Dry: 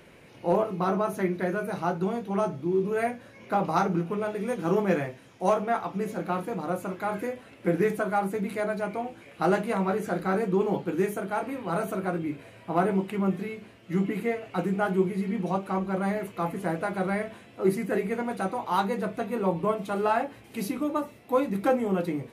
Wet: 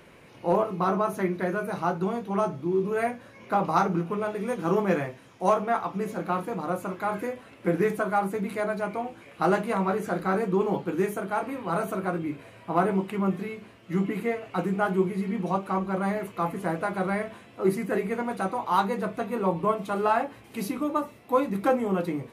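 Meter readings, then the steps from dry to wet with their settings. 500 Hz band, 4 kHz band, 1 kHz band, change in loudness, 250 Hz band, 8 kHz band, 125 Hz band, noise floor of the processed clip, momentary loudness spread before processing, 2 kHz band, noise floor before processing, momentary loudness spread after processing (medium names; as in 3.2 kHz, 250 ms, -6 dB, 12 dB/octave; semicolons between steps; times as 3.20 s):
0.0 dB, 0.0 dB, +2.0 dB, +0.5 dB, 0.0 dB, 0.0 dB, 0.0 dB, -51 dBFS, 6 LU, +1.0 dB, -52 dBFS, 7 LU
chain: peaking EQ 1.1 kHz +4.5 dB 0.55 oct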